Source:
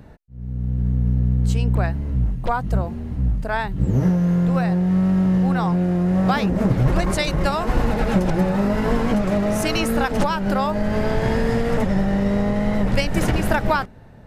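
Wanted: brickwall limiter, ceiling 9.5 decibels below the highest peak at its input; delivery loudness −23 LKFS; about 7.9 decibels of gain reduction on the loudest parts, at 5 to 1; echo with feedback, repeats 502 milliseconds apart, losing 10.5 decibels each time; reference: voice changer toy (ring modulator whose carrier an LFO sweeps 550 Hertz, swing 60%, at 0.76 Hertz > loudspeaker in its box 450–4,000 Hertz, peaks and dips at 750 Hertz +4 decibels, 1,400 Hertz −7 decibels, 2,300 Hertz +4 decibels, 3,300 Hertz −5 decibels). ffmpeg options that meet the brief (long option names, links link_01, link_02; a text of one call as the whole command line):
ffmpeg -i in.wav -af "acompressor=threshold=-22dB:ratio=5,alimiter=limit=-22.5dB:level=0:latency=1,aecho=1:1:502|1004|1506:0.299|0.0896|0.0269,aeval=exprs='val(0)*sin(2*PI*550*n/s+550*0.6/0.76*sin(2*PI*0.76*n/s))':channel_layout=same,highpass=450,equalizer=frequency=750:width_type=q:width=4:gain=4,equalizer=frequency=1400:width_type=q:width=4:gain=-7,equalizer=frequency=2300:width_type=q:width=4:gain=4,equalizer=frequency=3300:width_type=q:width=4:gain=-5,lowpass=frequency=4000:width=0.5412,lowpass=frequency=4000:width=1.3066,volume=10dB" out.wav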